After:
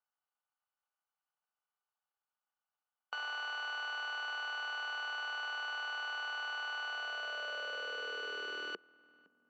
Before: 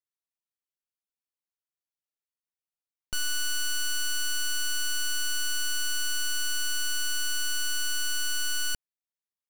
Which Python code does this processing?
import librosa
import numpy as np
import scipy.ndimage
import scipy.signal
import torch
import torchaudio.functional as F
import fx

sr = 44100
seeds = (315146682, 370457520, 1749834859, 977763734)

y = fx.bin_compress(x, sr, power=0.4)
y = fx.power_curve(y, sr, exponent=2.0)
y = fx.cabinet(y, sr, low_hz=170.0, low_slope=12, high_hz=3500.0, hz=(190.0, 320.0, 460.0, 1200.0), db=(5, -7, 9, 9))
y = fx.echo_filtered(y, sr, ms=512, feedback_pct=53, hz=1200.0, wet_db=-21.5)
y = fx.filter_sweep_highpass(y, sr, from_hz=800.0, to_hz=260.0, start_s=6.81, end_s=9.44, q=5.3)
y = y * 10.0 ** (-4.5 / 20.0)